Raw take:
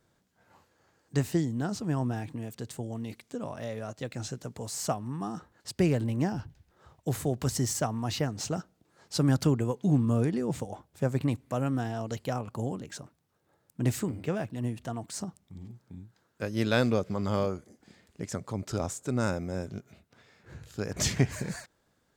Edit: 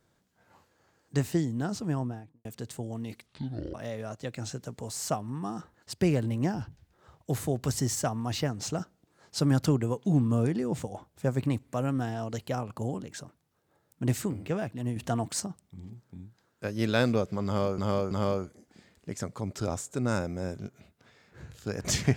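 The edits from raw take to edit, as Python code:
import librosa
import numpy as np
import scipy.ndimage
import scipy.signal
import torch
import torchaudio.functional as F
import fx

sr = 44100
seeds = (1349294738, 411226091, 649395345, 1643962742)

y = fx.studio_fade_out(x, sr, start_s=1.84, length_s=0.61)
y = fx.edit(y, sr, fx.speed_span(start_s=3.26, length_s=0.26, speed=0.54),
    fx.clip_gain(start_s=14.74, length_s=0.44, db=6.5),
    fx.repeat(start_s=17.23, length_s=0.33, count=3), tone=tone)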